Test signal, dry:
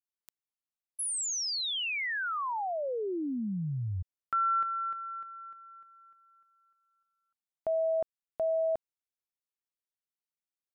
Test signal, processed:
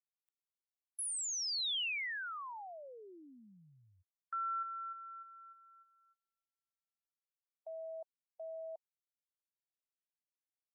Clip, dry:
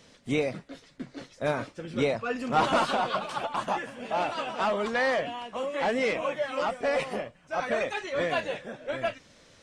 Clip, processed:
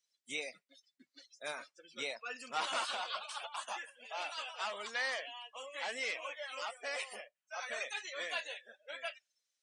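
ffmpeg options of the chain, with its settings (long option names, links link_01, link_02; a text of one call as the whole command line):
ffmpeg -i in.wav -filter_complex "[0:a]aderivative,acrossover=split=3400[link_01][link_02];[link_02]acompressor=threshold=-45dB:ratio=4:attack=1:release=60[link_03];[link_01][link_03]amix=inputs=2:normalize=0,afftdn=noise_reduction=27:noise_floor=-54,volume=4.5dB" out.wav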